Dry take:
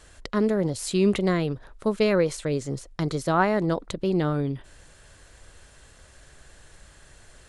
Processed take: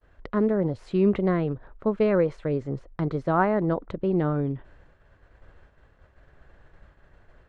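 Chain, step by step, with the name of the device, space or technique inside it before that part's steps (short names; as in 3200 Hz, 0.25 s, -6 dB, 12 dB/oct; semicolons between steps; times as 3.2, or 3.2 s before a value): hearing-loss simulation (LPF 1600 Hz 12 dB/oct; expander -47 dBFS)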